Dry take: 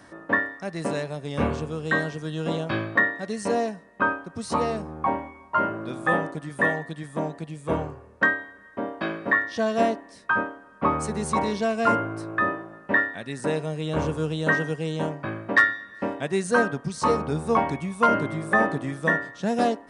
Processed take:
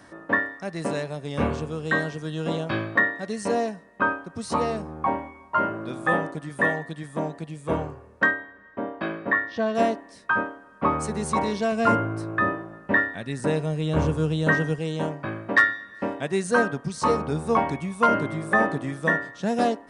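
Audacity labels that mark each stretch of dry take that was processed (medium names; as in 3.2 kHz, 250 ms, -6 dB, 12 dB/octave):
8.310000	9.750000	distance through air 160 m
11.720000	14.790000	bass shelf 170 Hz +8.5 dB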